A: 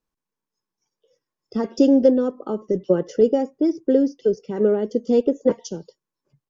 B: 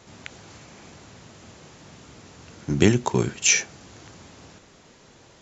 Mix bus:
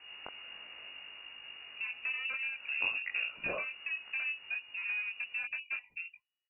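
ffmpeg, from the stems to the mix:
ffmpeg -i stem1.wav -i stem2.wav -filter_complex "[0:a]asoftclip=type=tanh:threshold=-19dB,adelay=250,volume=-5dB[link_01];[1:a]aeval=exprs='val(0)+0.00447*(sin(2*PI*50*n/s)+sin(2*PI*2*50*n/s)/2+sin(2*PI*3*50*n/s)/3+sin(2*PI*4*50*n/s)/4+sin(2*PI*5*50*n/s)/5)':channel_layout=same,volume=-2.5dB[link_02];[link_01][link_02]amix=inputs=2:normalize=0,flanger=delay=17:depth=4.7:speed=1.5,lowpass=frequency=2500:width_type=q:width=0.5098,lowpass=frequency=2500:width_type=q:width=0.6013,lowpass=frequency=2500:width_type=q:width=0.9,lowpass=frequency=2500:width_type=q:width=2.563,afreqshift=-2900,acompressor=threshold=-39dB:ratio=2" out.wav

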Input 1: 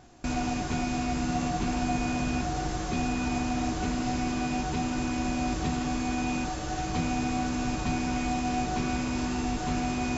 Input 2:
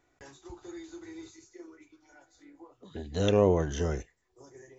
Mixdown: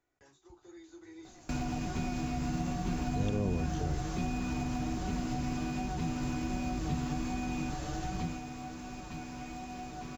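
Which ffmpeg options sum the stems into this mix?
ffmpeg -i stem1.wav -i stem2.wav -filter_complex "[0:a]acontrast=73,acrusher=bits=8:mode=log:mix=0:aa=0.000001,flanger=delay=5.2:depth=1.9:regen=62:speed=1.3:shape=sinusoidal,adelay=1250,volume=-11dB,afade=type=out:start_time=8.13:duration=0.29:silence=0.266073[link_01];[1:a]volume=-11.5dB[link_02];[link_01][link_02]amix=inputs=2:normalize=0,acrossover=split=250[link_03][link_04];[link_04]acompressor=threshold=-46dB:ratio=4[link_05];[link_03][link_05]amix=inputs=2:normalize=0,dynaudnorm=framelen=140:gausssize=13:maxgain=7dB" out.wav

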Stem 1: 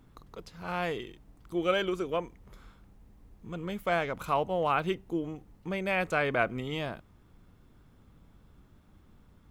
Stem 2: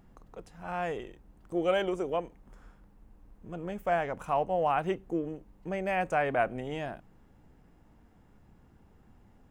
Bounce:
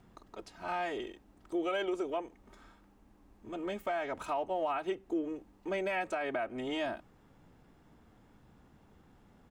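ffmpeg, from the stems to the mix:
ffmpeg -i stem1.wav -i stem2.wav -filter_complex "[0:a]lowpass=frequency=8500:width=0.5412,lowpass=frequency=8500:width=1.3066,volume=-3.5dB[link_01];[1:a]adelay=3.4,volume=0dB[link_02];[link_01][link_02]amix=inputs=2:normalize=0,lowshelf=frequency=110:gain=-9.5,alimiter=level_in=1dB:limit=-24dB:level=0:latency=1:release=227,volume=-1dB" out.wav

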